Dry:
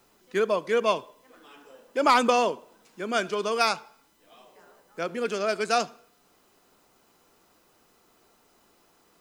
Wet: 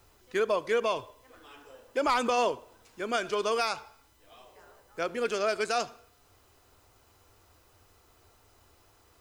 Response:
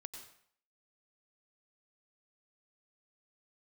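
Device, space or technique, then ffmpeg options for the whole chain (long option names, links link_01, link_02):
car stereo with a boomy subwoofer: -af "lowshelf=frequency=130:width_type=q:width=3:gain=10.5,alimiter=limit=-17.5dB:level=0:latency=1:release=78"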